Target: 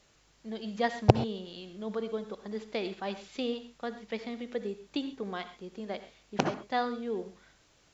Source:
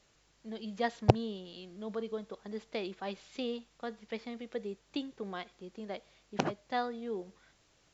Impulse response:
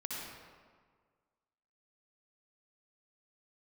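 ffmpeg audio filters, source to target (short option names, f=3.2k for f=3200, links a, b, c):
-filter_complex "[0:a]asplit=2[a][b];[1:a]atrim=start_sample=2205,atrim=end_sample=6174[c];[b][c]afir=irnorm=-1:irlink=0,volume=-6dB[d];[a][d]amix=inputs=2:normalize=0,volume=1dB"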